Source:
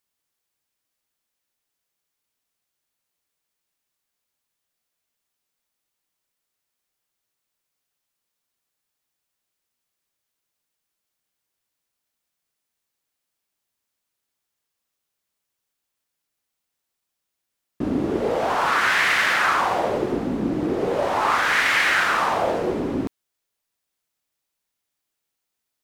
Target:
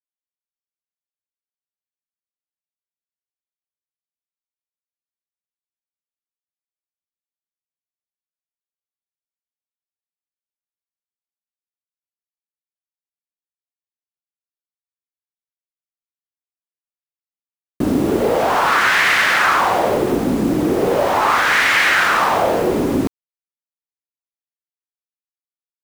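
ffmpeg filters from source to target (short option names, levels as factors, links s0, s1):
-filter_complex "[0:a]asplit=2[s0][s1];[s1]alimiter=limit=0.119:level=0:latency=1:release=59,volume=1.12[s2];[s0][s2]amix=inputs=2:normalize=0,acrusher=bits=5:mix=0:aa=0.000001,volume=1.19"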